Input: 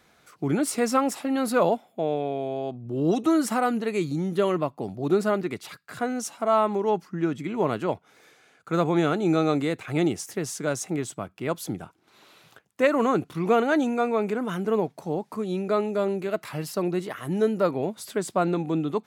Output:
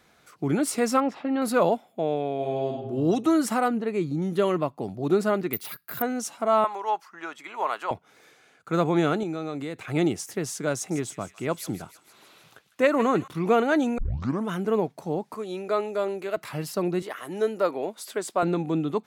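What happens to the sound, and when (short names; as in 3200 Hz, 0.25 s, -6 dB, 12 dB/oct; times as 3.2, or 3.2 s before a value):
1–1.42 air absorption 260 m
2.36–2.89 reverb throw, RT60 0.94 s, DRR -0.5 dB
3.68–4.22 high shelf 2400 Hz -11 dB
5.53–6.02 careless resampling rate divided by 3×, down filtered, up zero stuff
6.64–7.91 resonant high-pass 920 Hz, resonance Q 1.6
9.23–9.87 compressor 2.5:1, threshold -32 dBFS
10.75–13.28 thin delay 0.155 s, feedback 61%, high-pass 1700 Hz, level -12 dB
13.98 tape start 0.50 s
15.34–16.37 tone controls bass -15 dB, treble 0 dB
17.02–18.43 HPF 360 Hz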